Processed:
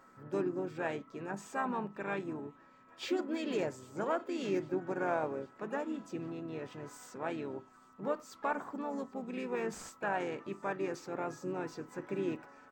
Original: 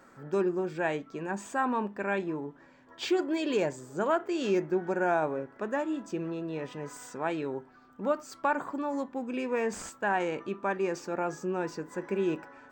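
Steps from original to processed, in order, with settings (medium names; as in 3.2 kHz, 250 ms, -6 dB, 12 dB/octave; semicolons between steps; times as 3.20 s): whistle 1.3 kHz -55 dBFS; feedback echo behind a high-pass 800 ms, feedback 72%, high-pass 3 kHz, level -23 dB; harmony voices -5 st -10 dB, -3 st -11 dB, +7 st -18 dB; trim -7 dB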